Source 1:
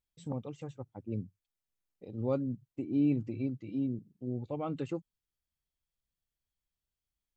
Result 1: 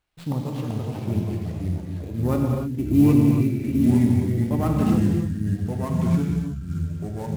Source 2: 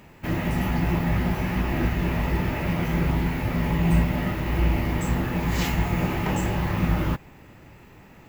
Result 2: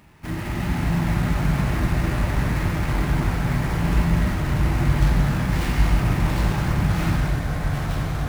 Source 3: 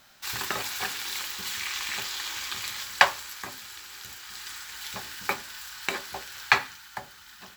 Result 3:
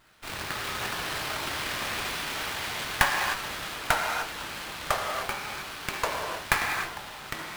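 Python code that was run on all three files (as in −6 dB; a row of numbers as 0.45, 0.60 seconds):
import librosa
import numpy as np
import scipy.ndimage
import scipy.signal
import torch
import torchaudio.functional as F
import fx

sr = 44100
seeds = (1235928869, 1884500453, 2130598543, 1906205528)

y = fx.graphic_eq(x, sr, hz=(500, 4000, 8000), db=(-8, -4, 5))
y = fx.sample_hold(y, sr, seeds[0], rate_hz=12000.0, jitter_pct=20)
y = fx.echo_pitch(y, sr, ms=324, semitones=-3, count=3, db_per_echo=-3.0)
y = fx.rev_gated(y, sr, seeds[1], gate_ms=330, shape='flat', drr_db=0.0)
y = fx.running_max(y, sr, window=5)
y = librosa.util.normalize(y) * 10.0 ** (-6 / 20.0)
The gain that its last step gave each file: +11.5, −1.5, −3.0 decibels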